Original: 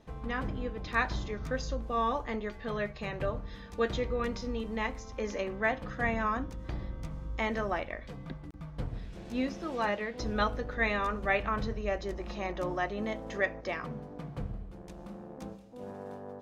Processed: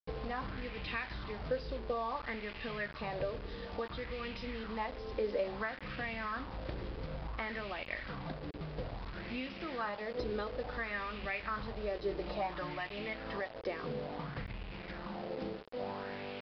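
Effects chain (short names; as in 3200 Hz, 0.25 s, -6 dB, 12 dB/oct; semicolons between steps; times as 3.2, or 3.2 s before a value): 12.02–13.09 comb 6.6 ms, depth 58%; compressor 12:1, threshold -38 dBFS, peak gain reduction 16 dB; bit-crush 8-bit; downsampling 11025 Hz; LFO bell 0.58 Hz 400–2700 Hz +11 dB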